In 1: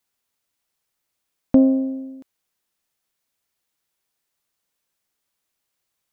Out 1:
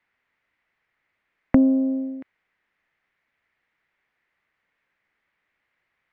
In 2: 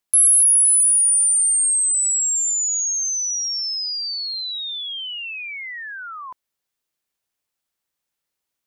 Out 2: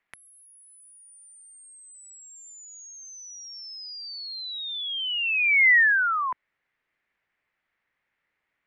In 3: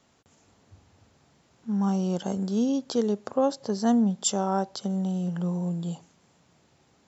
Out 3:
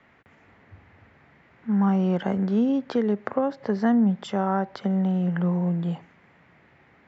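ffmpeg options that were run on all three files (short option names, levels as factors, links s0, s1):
-filter_complex "[0:a]acrossover=split=210[s0][s1];[s1]acompressor=threshold=0.0447:ratio=5[s2];[s0][s2]amix=inputs=2:normalize=0,lowpass=f=2000:t=q:w=3.7,volume=1.68"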